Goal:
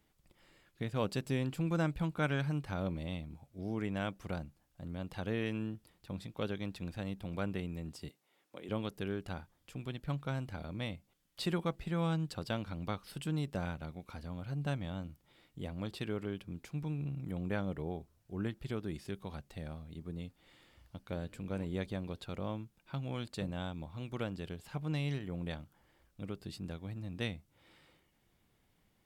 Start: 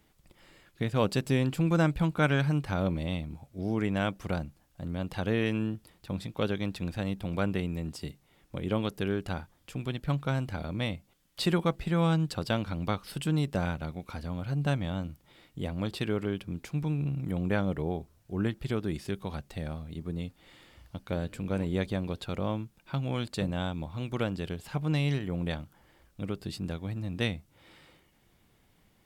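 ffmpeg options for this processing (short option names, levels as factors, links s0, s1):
-filter_complex "[0:a]asettb=1/sr,asplit=3[s0][s1][s2];[s0]atrim=end=8.094[s3];[s1]atrim=start=8.09:end=8.69,asetpts=PTS-STARTPTS,afade=t=in:d=0.004:c=qsin,afade=t=out:st=0.596:d=0.004:c=qsin,highpass=350[s4];[s2]atrim=start=8.686[s5];[s3][s4]acrossfade=d=0.004:c1=hsin:c2=qsin[s6];[s6][s5]acrossfade=d=0.004:c1=qsin:c2=hsin,volume=0.422"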